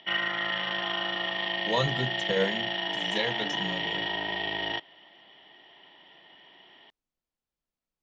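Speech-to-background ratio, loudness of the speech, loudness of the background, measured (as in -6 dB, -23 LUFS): -2.5 dB, -32.0 LUFS, -29.5 LUFS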